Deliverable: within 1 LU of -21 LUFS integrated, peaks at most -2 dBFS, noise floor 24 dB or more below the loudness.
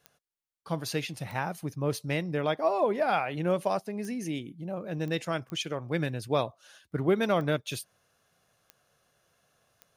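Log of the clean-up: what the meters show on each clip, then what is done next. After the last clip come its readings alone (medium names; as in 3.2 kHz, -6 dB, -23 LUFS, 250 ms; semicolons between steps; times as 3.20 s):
clicks found 8; loudness -30.5 LUFS; peak level -13.5 dBFS; loudness target -21.0 LUFS
-> de-click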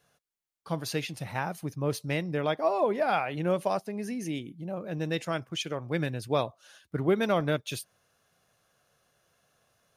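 clicks found 0; loudness -30.5 LUFS; peak level -13.5 dBFS; loudness target -21.0 LUFS
-> trim +9.5 dB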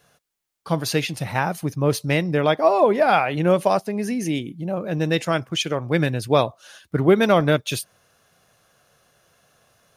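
loudness -21.0 LUFS; peak level -4.0 dBFS; noise floor -72 dBFS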